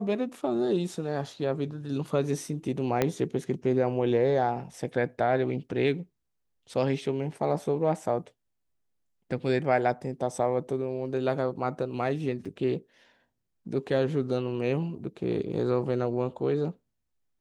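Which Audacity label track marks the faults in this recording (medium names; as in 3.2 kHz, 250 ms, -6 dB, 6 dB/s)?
3.020000	3.020000	pop -10 dBFS
12.450000	12.460000	dropout 5.6 ms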